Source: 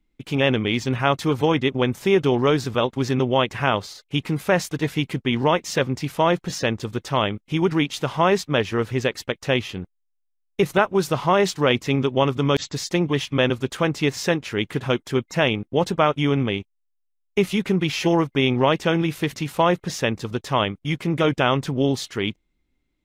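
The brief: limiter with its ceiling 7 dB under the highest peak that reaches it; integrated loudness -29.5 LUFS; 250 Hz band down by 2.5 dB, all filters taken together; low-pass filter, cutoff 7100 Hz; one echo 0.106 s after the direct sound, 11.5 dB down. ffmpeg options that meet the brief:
-af "lowpass=7.1k,equalizer=f=250:t=o:g=-3.5,alimiter=limit=-11dB:level=0:latency=1,aecho=1:1:106:0.266,volume=-5.5dB"

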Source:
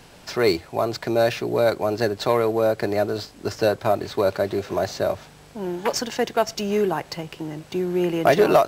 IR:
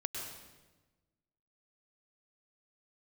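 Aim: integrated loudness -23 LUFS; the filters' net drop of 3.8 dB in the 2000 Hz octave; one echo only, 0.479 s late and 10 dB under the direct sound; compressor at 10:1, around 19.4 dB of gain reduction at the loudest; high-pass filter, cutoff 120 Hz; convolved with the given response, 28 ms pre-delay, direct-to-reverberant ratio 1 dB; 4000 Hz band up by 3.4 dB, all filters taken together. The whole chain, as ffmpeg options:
-filter_complex "[0:a]highpass=120,equalizer=f=2k:t=o:g=-6.5,equalizer=f=4k:t=o:g=5.5,acompressor=threshold=-32dB:ratio=10,aecho=1:1:479:0.316,asplit=2[a][b];[1:a]atrim=start_sample=2205,adelay=28[c];[b][c]afir=irnorm=-1:irlink=0,volume=-2.5dB[d];[a][d]amix=inputs=2:normalize=0,volume=10.5dB"

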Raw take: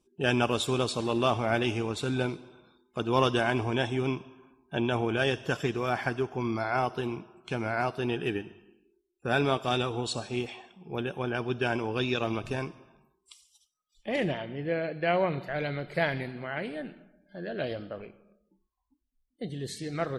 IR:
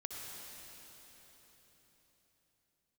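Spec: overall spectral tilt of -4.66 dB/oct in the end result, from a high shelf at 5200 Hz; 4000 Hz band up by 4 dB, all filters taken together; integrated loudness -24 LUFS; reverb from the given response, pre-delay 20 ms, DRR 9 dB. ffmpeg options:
-filter_complex "[0:a]equalizer=f=4k:t=o:g=3,highshelf=f=5.2k:g=5.5,asplit=2[a][b];[1:a]atrim=start_sample=2205,adelay=20[c];[b][c]afir=irnorm=-1:irlink=0,volume=-8.5dB[d];[a][d]amix=inputs=2:normalize=0,volume=5dB"

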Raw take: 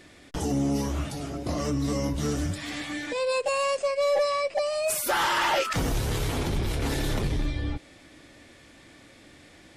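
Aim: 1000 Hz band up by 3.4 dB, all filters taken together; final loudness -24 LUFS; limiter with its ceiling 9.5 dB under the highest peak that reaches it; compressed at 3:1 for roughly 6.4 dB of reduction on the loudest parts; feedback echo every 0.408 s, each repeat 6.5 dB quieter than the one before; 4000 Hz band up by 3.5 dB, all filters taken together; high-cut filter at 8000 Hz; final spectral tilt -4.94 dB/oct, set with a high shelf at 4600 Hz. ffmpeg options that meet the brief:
-af "lowpass=8k,equalizer=f=1k:t=o:g=4,equalizer=f=4k:t=o:g=8.5,highshelf=f=4.6k:g=-8,acompressor=threshold=-28dB:ratio=3,alimiter=level_in=3.5dB:limit=-24dB:level=0:latency=1,volume=-3.5dB,aecho=1:1:408|816|1224|1632|2040|2448:0.473|0.222|0.105|0.0491|0.0231|0.0109,volume=10dB"

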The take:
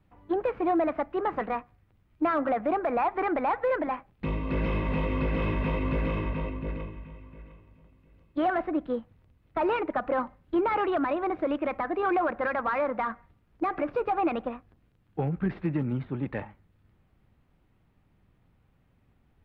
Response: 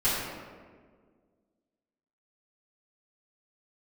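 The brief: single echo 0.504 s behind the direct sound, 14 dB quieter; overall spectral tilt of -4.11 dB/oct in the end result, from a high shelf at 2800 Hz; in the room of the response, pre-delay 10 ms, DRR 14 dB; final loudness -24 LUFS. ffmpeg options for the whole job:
-filter_complex "[0:a]highshelf=f=2.8k:g=-8,aecho=1:1:504:0.2,asplit=2[a][b];[1:a]atrim=start_sample=2205,adelay=10[c];[b][c]afir=irnorm=-1:irlink=0,volume=-26.5dB[d];[a][d]amix=inputs=2:normalize=0,volume=5.5dB"

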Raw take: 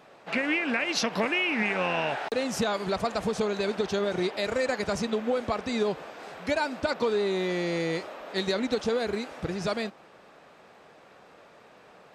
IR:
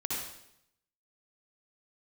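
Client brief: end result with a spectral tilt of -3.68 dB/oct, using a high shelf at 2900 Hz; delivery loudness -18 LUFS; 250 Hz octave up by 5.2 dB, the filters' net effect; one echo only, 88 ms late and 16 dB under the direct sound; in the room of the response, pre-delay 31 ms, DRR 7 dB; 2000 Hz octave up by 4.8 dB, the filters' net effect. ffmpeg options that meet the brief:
-filter_complex "[0:a]equalizer=f=250:t=o:g=6.5,equalizer=f=2k:t=o:g=8,highshelf=f=2.9k:g=-5.5,aecho=1:1:88:0.158,asplit=2[a][b];[1:a]atrim=start_sample=2205,adelay=31[c];[b][c]afir=irnorm=-1:irlink=0,volume=-11.5dB[d];[a][d]amix=inputs=2:normalize=0,volume=6.5dB"

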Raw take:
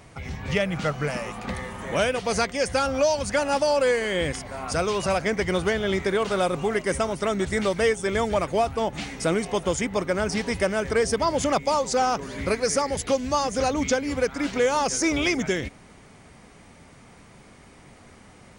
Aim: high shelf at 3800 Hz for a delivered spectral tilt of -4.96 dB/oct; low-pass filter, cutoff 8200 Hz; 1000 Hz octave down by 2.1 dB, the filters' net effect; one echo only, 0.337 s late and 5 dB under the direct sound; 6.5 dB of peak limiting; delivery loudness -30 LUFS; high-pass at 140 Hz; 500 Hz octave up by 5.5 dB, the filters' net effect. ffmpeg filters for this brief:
-af "highpass=140,lowpass=8.2k,equalizer=f=500:t=o:g=8,equalizer=f=1k:t=o:g=-6,highshelf=f=3.8k:g=-5.5,alimiter=limit=-13.5dB:level=0:latency=1,aecho=1:1:337:0.562,volume=-7.5dB"

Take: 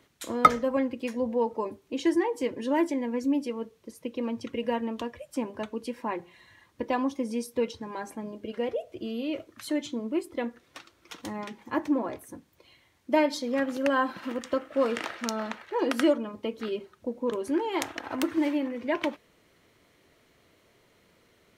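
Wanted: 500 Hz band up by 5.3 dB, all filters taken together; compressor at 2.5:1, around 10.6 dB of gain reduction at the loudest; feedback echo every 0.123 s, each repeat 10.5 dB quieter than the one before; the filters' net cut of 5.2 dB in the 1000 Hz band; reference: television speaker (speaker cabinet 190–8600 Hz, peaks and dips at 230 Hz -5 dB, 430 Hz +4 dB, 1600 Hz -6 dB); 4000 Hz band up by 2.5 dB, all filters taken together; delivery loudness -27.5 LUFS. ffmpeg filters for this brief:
-af "equalizer=f=500:t=o:g=6,equalizer=f=1k:t=o:g=-7.5,equalizer=f=4k:t=o:g=4,acompressor=threshold=-31dB:ratio=2.5,highpass=f=190:w=0.5412,highpass=f=190:w=1.3066,equalizer=f=230:t=q:w=4:g=-5,equalizer=f=430:t=q:w=4:g=4,equalizer=f=1.6k:t=q:w=4:g=-6,lowpass=f=8.6k:w=0.5412,lowpass=f=8.6k:w=1.3066,aecho=1:1:123|246|369:0.299|0.0896|0.0269,volume=6dB"

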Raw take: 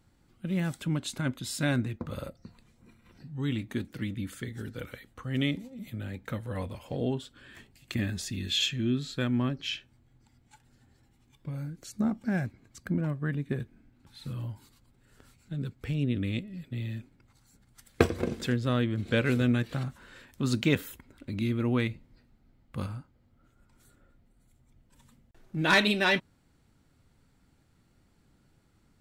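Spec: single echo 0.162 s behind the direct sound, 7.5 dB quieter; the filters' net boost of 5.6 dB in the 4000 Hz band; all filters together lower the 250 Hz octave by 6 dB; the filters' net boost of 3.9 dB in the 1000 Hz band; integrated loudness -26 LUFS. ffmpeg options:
-af "equalizer=f=250:t=o:g=-8,equalizer=f=1k:t=o:g=5,equalizer=f=4k:t=o:g=6.5,aecho=1:1:162:0.422,volume=4dB"

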